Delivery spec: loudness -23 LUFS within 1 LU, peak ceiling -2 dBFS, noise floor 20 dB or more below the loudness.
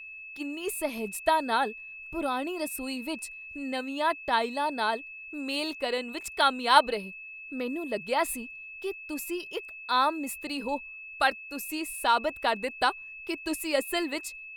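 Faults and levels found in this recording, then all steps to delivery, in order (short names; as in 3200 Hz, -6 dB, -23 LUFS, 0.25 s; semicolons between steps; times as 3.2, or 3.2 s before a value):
steady tone 2600 Hz; tone level -41 dBFS; loudness -29.5 LUFS; peak -5.5 dBFS; loudness target -23.0 LUFS
-> notch 2600 Hz, Q 30; gain +6.5 dB; limiter -2 dBFS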